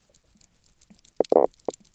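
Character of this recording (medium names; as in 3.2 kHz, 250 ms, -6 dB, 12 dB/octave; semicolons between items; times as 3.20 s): tremolo triangle 7.6 Hz, depth 55%; Opus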